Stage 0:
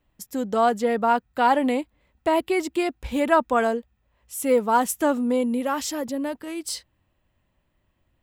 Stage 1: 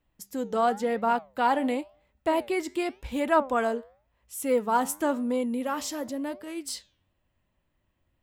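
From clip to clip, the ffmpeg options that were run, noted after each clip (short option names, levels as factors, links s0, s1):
-af "bandreject=f=197.7:t=h:w=4,bandreject=f=395.4:t=h:w=4,bandreject=f=593.1:t=h:w=4,bandreject=f=790.8:t=h:w=4,flanger=delay=4.3:depth=7.4:regen=87:speed=0.93:shape=triangular"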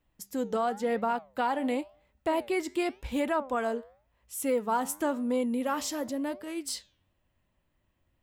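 -af "alimiter=limit=0.106:level=0:latency=1:release=306"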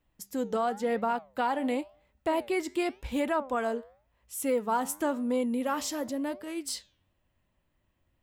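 -af anull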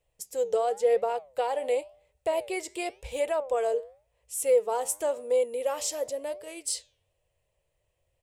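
-af "firequalizer=gain_entry='entry(140,0);entry(230,-21);entry(460,11);entry(910,-1);entry(1400,-6);entry(2400,4);entry(3600,2);entry(8700,11);entry(14000,-1)':delay=0.05:min_phase=1,volume=0.708"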